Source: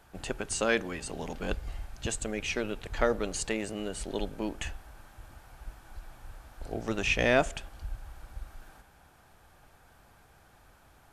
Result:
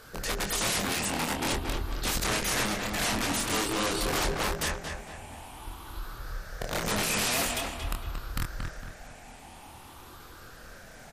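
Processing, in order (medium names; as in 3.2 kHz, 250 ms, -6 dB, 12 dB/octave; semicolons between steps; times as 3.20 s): drifting ripple filter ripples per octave 0.59, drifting +0.48 Hz, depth 16 dB; bass shelf 180 Hz -4 dB; hum notches 50/100/150/200/250/300/350/400 Hz; hard clipper -19 dBFS, distortion -11 dB; added noise pink -59 dBFS; integer overflow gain 29.5 dB; doubling 25 ms -4.5 dB; on a send: filtered feedback delay 229 ms, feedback 42%, low-pass 3.3 kHz, level -4 dB; on the sum: trim +5 dB; MP3 56 kbps 44.1 kHz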